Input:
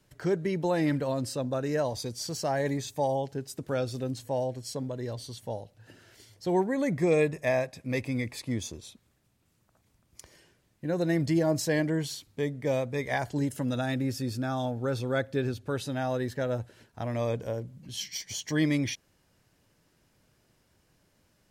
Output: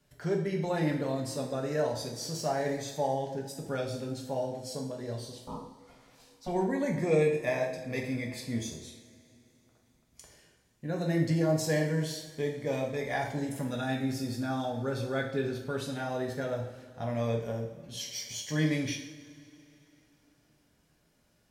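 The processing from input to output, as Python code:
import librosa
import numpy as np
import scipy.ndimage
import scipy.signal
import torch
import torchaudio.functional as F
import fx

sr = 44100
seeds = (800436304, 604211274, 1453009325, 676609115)

y = fx.ring_mod(x, sr, carrier_hz=380.0, at=(5.31, 6.47), fade=0.02)
y = fx.rev_double_slope(y, sr, seeds[0], early_s=0.61, late_s=3.3, knee_db=-19, drr_db=-0.5)
y = y * librosa.db_to_amplitude(-5.0)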